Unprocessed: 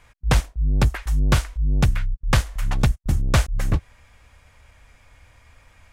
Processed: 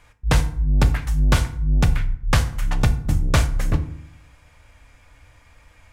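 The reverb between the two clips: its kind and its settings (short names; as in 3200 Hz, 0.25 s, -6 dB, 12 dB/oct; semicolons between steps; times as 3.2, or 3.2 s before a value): FDN reverb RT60 0.61 s, low-frequency decay 1.5×, high-frequency decay 0.65×, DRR 7.5 dB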